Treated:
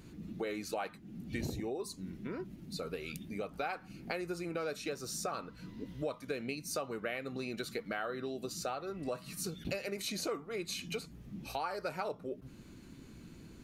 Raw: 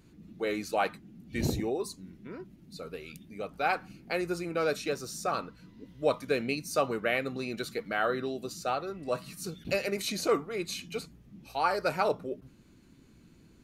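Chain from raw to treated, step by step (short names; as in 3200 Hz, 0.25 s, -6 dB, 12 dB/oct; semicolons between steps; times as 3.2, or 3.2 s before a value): compressor 5:1, threshold -42 dBFS, peak gain reduction 18.5 dB; gain +5.5 dB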